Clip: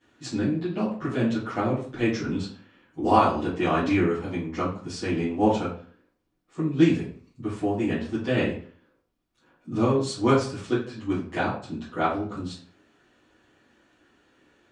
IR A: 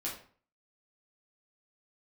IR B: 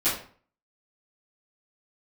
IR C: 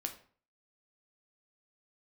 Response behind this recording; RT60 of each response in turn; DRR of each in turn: B; 0.45, 0.45, 0.45 s; -5.5, -15.5, 4.5 dB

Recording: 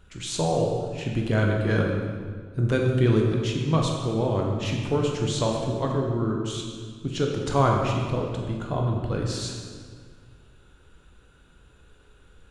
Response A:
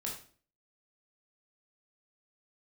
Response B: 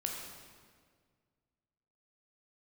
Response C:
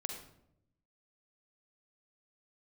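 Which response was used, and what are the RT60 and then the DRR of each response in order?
B; 0.45, 1.8, 0.80 s; -3.0, 0.0, 3.5 dB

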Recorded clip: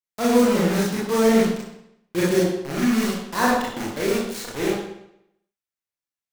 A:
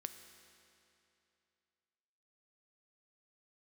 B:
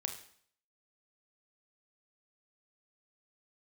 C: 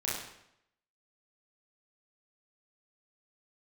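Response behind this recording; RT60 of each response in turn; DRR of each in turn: C; 2.8, 0.60, 0.75 s; 8.0, 4.5, -7.0 dB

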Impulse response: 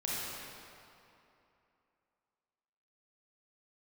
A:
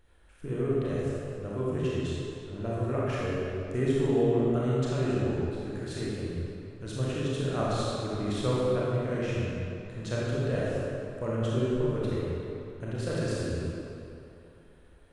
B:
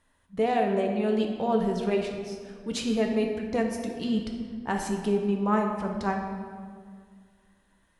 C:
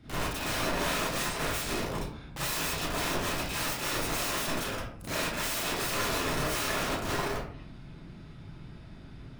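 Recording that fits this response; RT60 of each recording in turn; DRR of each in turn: A; 2.8, 2.0, 0.60 s; -7.0, 2.0, -10.5 dB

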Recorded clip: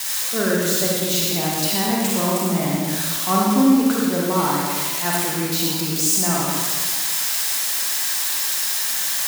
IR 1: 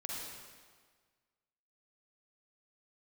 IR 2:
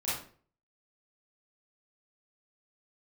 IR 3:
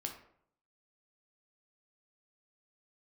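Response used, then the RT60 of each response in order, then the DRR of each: 1; 1.6, 0.45, 0.65 s; -4.0, -11.0, 2.5 dB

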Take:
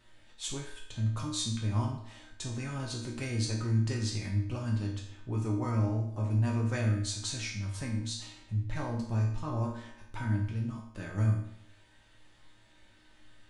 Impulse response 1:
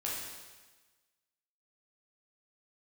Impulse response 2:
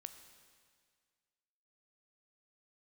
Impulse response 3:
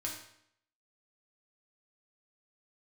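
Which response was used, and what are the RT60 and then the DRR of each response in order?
3; 1.3, 1.9, 0.70 s; -6.0, 8.5, -2.5 dB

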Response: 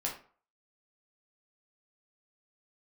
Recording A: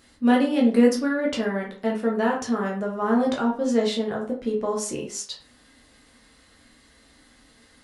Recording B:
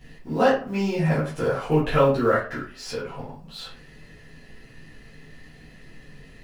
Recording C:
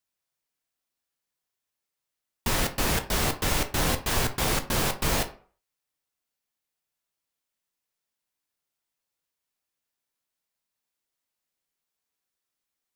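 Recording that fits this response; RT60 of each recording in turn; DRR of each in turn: A; 0.45, 0.45, 0.45 s; -2.5, -10.5, 6.5 dB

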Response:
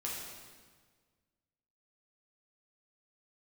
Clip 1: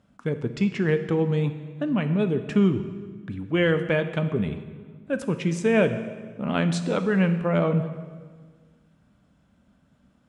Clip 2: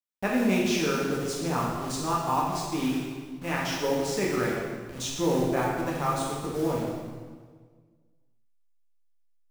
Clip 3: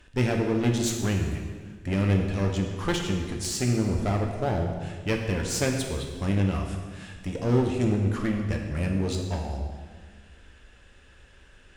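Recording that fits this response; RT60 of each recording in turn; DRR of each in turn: 2; 1.6, 1.6, 1.6 s; 8.5, -5.0, 1.5 dB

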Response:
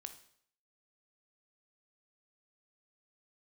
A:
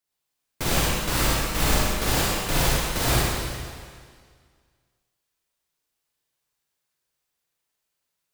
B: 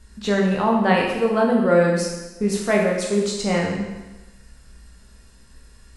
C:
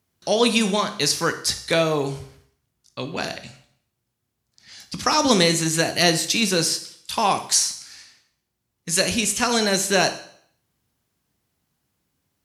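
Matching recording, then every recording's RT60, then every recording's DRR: C; 1.9, 1.1, 0.65 s; -6.5, -1.5, 8.0 dB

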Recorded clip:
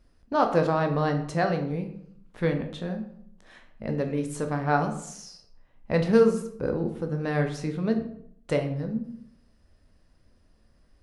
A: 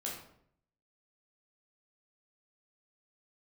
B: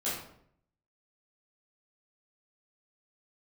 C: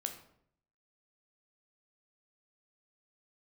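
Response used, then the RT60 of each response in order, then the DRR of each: C; 0.65, 0.65, 0.65 s; -4.0, -11.0, 4.5 dB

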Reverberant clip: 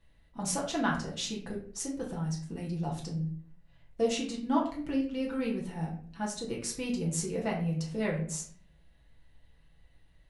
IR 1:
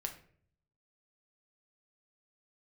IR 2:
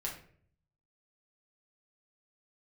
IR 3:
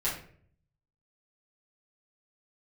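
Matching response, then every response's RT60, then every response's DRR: 2; 0.55, 0.55, 0.55 s; 3.0, -3.5, -10.0 dB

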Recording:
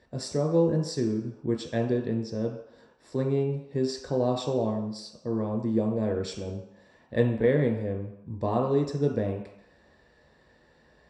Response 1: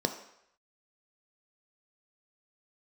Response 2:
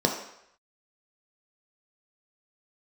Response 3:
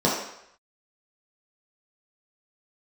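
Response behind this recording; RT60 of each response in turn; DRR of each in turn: 2; 0.75, 0.75, 0.75 s; 6.0, 1.5, -5.5 dB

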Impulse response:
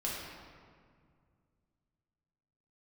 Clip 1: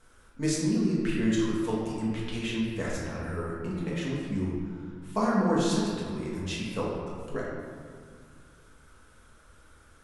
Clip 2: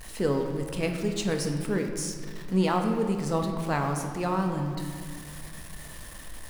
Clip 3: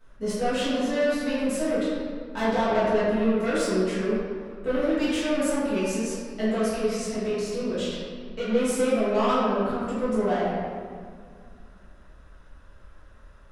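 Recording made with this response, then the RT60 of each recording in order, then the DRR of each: 1; 2.1, 2.1, 2.0 s; -5.5, 3.0, -12.5 dB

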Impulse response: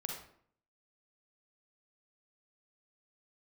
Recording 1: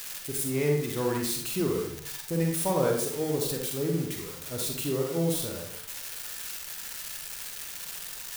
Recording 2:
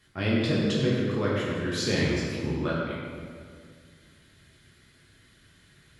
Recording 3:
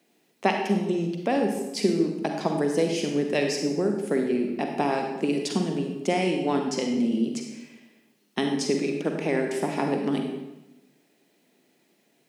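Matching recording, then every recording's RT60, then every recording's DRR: 1; 0.60, 2.1, 1.0 s; 0.5, -6.5, 3.0 dB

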